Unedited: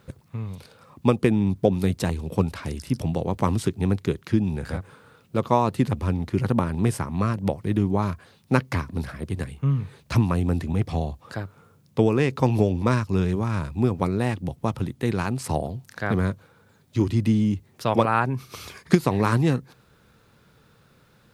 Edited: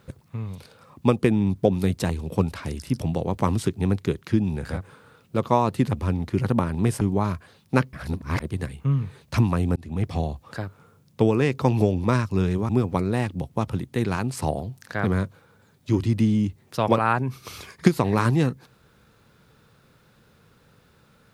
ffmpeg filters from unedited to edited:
ffmpeg -i in.wav -filter_complex "[0:a]asplit=6[link_01][link_02][link_03][link_04][link_05][link_06];[link_01]atrim=end=7.012[link_07];[link_02]atrim=start=7.788:end=8.712[link_08];[link_03]atrim=start=8.708:end=9.182,asetpts=PTS-STARTPTS,areverse[link_09];[link_04]atrim=start=9.178:end=10.54,asetpts=PTS-STARTPTS,afade=type=out:start_time=1.358:duration=0.004:curve=hsin[link_10];[link_05]atrim=start=10.54:end=13.472,asetpts=PTS-STARTPTS,afade=type=in:duration=0.41:curve=qsin[link_11];[link_06]atrim=start=13.758[link_12];[link_07][link_08]acrossfade=duration=0.004:curve1=hsin:curve2=hsin[link_13];[link_13][link_09]acrossfade=duration=0.004:curve1=hsin:curve2=hsin[link_14];[link_10][link_11]concat=n=2:v=0:a=1[link_15];[link_14][link_15]acrossfade=duration=0.004:curve1=hsin:curve2=hsin[link_16];[link_16][link_12]acrossfade=duration=0.004:curve1=hsin:curve2=hsin" out.wav

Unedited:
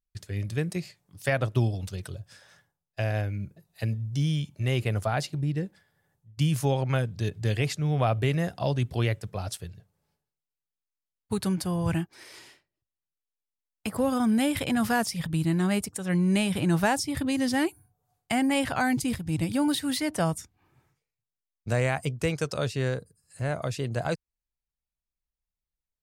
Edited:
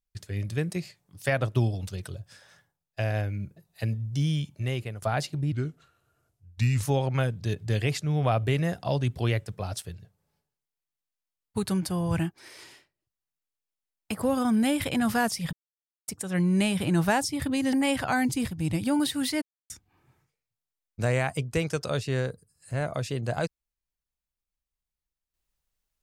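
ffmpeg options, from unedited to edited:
ffmpeg -i in.wav -filter_complex "[0:a]asplit=9[link_01][link_02][link_03][link_04][link_05][link_06][link_07][link_08][link_09];[link_01]atrim=end=5.02,asetpts=PTS-STARTPTS,afade=type=out:start_time=4.51:duration=0.51:silence=0.177828[link_10];[link_02]atrim=start=5.02:end=5.524,asetpts=PTS-STARTPTS,afade=type=in:duration=0.004:curve=hsin:silence=0.177828[link_11];[link_03]atrim=start=5.52:end=6.58,asetpts=PTS-STARTPTS,asetrate=35721,aresample=44100,atrim=end_sample=57711,asetpts=PTS-STARTPTS[link_12];[link_04]atrim=start=6.576:end=15.28,asetpts=PTS-STARTPTS,afade=type=out:start_time=8.7:duration=0.004:curve=hsin[link_13];[link_05]atrim=start=15.28:end=15.83,asetpts=PTS-STARTPTS,volume=0[link_14];[link_06]atrim=start=15.83:end=17.482,asetpts=PTS-STARTPTS,afade=type=in:duration=0.004:curve=hsin[link_15];[link_07]atrim=start=18.408:end=20.1,asetpts=PTS-STARTPTS,afade=type=out:start_time=1.688:duration=0.004:curve=hsin[link_16];[link_08]atrim=start=20.1:end=20.38,asetpts=PTS-STARTPTS,volume=0[link_17];[link_09]atrim=start=20.38,asetpts=PTS-STARTPTS,afade=type=in:duration=0.004:curve=hsin[link_18];[link_10][link_11]concat=n=2:v=0:a=1[link_19];[link_19][link_12]acrossfade=duration=0.004:curve1=hsin:curve2=hsin[link_20];[link_13][link_14][link_15]concat=n=3:v=0:a=1[link_21];[link_20][link_21]acrossfade=duration=0.004:curve1=hsin:curve2=hsin[link_22];[link_16][link_17][link_18]concat=n=3:v=0:a=1[link_23];[link_22][link_23]acrossfade=duration=0.004:curve1=hsin:curve2=hsin" out.wav

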